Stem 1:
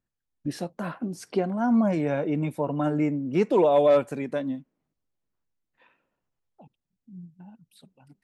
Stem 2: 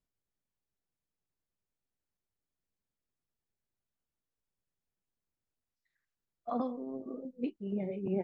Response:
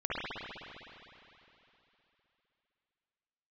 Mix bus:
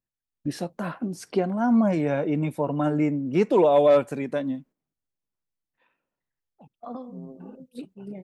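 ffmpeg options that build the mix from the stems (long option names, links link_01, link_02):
-filter_complex "[0:a]volume=1.5dB[link_01];[1:a]adelay=350,volume=-3dB[link_02];[link_01][link_02]amix=inputs=2:normalize=0,agate=range=-9dB:threshold=-49dB:ratio=16:detection=peak"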